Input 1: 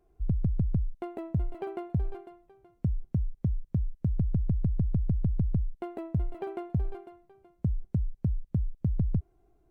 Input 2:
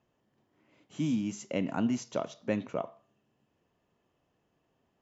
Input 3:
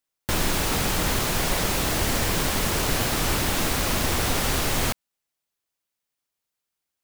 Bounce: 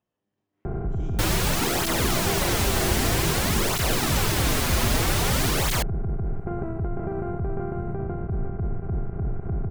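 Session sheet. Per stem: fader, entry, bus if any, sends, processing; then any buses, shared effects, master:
+1.5 dB, 0.65 s, bus A, no send, compressor on every frequency bin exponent 0.2; low-pass filter 1,800 Hz 24 dB per octave; hollow resonant body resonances 460/1,400 Hz, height 8 dB
−1.5 dB, 0.00 s, bus A, no send, tuned comb filter 100 Hz, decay 0.44 s, harmonics all, mix 70%
+3.0 dB, 0.90 s, no bus, no send, through-zero flanger with one copy inverted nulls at 0.52 Hz, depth 7.2 ms
bus A: 0.0 dB, brickwall limiter −20 dBFS, peak gain reduction 10 dB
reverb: not used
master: no processing

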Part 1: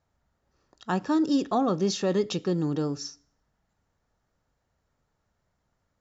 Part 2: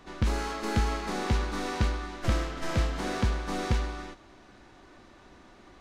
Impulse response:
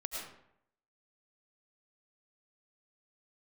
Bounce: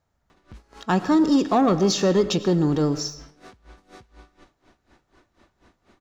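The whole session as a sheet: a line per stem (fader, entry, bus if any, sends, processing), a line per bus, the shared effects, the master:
+2.0 dB, 0.00 s, send −11 dB, leveller curve on the samples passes 1
−1.5 dB, 0.30 s, no send, brickwall limiter −22.5 dBFS, peak gain reduction 9.5 dB; downward compressor 5 to 1, threshold −39 dBFS, peak gain reduction 11.5 dB; tremolo with a sine in dB 4.1 Hz, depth 22 dB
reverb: on, RT60 0.75 s, pre-delay 65 ms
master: no processing

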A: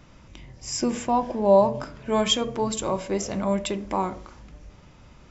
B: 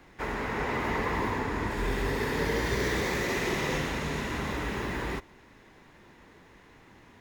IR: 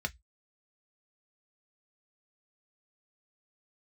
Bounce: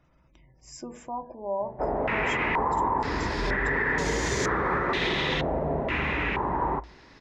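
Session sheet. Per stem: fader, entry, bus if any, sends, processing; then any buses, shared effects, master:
−13.5 dB, 0.00 s, send −10.5 dB, hum removal 96.93 Hz, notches 9; gate on every frequency bin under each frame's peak −30 dB strong
+2.0 dB, 1.60 s, send −17 dB, low-pass on a step sequencer 2.1 Hz 670–6,900 Hz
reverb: on, RT60 0.10 s, pre-delay 3 ms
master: brickwall limiter −17 dBFS, peak gain reduction 7 dB

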